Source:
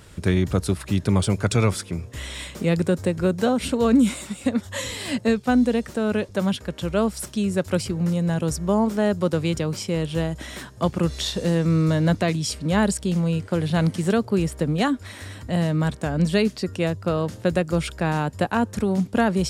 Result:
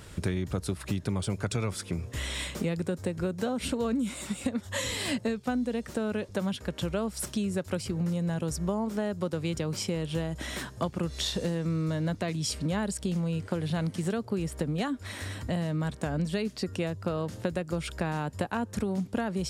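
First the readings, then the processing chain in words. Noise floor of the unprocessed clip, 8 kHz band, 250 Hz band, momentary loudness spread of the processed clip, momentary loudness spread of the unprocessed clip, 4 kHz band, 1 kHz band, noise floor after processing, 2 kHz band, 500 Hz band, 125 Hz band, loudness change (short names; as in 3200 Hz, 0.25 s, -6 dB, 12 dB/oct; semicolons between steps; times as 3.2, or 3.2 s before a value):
-43 dBFS, -5.0 dB, -9.0 dB, 3 LU, 7 LU, -5.0 dB, -9.0 dB, -47 dBFS, -7.5 dB, -9.0 dB, -8.0 dB, -8.5 dB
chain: compressor 6:1, threshold -27 dBFS, peak gain reduction 13.5 dB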